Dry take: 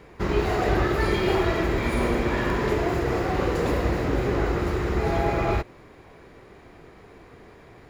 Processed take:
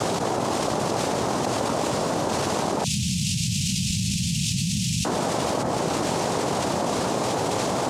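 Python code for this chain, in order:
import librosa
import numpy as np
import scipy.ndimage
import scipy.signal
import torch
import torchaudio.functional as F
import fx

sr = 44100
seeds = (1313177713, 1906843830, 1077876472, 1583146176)

y = fx.low_shelf(x, sr, hz=230.0, db=10.5)
y = fx.hum_notches(y, sr, base_hz=60, count=4)
y = fx.noise_vocoder(y, sr, seeds[0], bands=2)
y = fx.cheby1_bandstop(y, sr, low_hz=190.0, high_hz=2600.0, order=4, at=(2.84, 5.05))
y = fx.env_flatten(y, sr, amount_pct=100)
y = F.gain(torch.from_numpy(y), -8.5).numpy()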